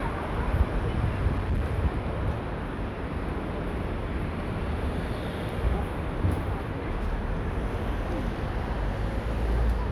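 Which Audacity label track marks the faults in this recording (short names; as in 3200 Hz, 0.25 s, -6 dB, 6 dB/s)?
1.310000	1.790000	clipped -23 dBFS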